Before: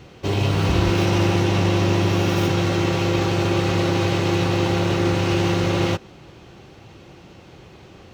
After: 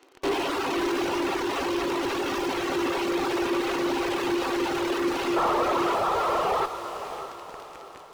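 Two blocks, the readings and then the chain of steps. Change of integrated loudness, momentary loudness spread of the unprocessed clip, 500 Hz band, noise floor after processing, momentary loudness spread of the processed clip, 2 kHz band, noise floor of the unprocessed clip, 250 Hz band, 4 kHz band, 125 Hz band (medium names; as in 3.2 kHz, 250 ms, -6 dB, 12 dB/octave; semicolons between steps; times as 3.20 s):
-6.0 dB, 2 LU, -3.5 dB, -45 dBFS, 11 LU, -3.5 dB, -46 dBFS, -6.0 dB, -5.5 dB, -26.0 dB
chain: rippled Chebyshev high-pass 260 Hz, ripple 6 dB; painted sound noise, 5.36–6.66 s, 380–1400 Hz -21 dBFS; in parallel at -6 dB: fuzz box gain 48 dB, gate -42 dBFS; on the sum: reverb removal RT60 1.6 s; echo that smears into a reverb 580 ms, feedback 45%, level -10.5 dB; slew-rate limiter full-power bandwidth 240 Hz; trim -6.5 dB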